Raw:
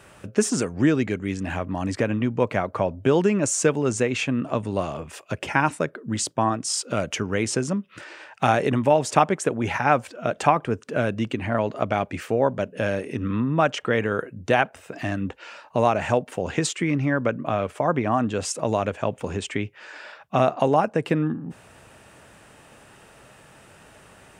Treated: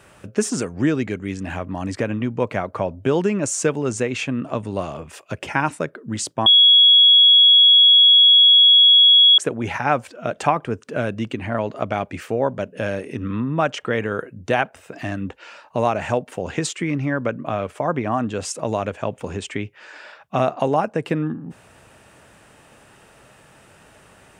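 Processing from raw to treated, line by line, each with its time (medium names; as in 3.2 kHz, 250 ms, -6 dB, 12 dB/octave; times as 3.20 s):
6.46–9.38 s: bleep 3.34 kHz -8 dBFS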